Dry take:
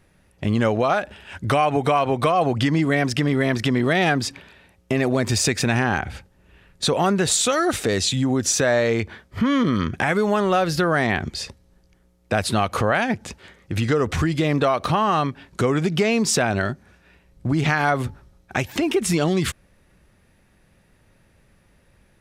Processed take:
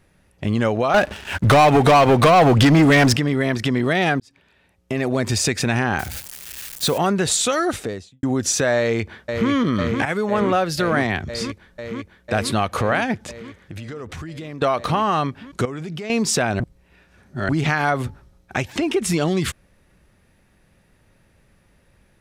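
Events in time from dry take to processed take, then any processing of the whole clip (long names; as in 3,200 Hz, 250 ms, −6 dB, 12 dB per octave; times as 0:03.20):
0:00.94–0:03.17: leveller curve on the samples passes 3
0:04.20–0:05.20: fade in
0:05.99–0:06.98: spike at every zero crossing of −22 dBFS
0:07.58–0:08.23: fade out and dull
0:08.78–0:09.51: delay throw 500 ms, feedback 85%, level −5 dB
0:10.05–0:11.30: multiband upward and downward expander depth 100%
0:13.30–0:14.62: downward compressor 4 to 1, threshold −32 dBFS
0:15.65–0:16.10: output level in coarse steps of 15 dB
0:16.60–0:17.49: reverse
0:18.58–0:19.04: low-pass filter 10,000 Hz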